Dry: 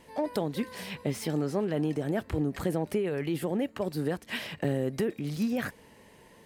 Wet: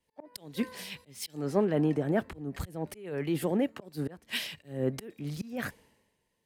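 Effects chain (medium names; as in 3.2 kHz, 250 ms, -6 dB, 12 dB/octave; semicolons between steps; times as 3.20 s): slow attack 217 ms; three bands expanded up and down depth 100%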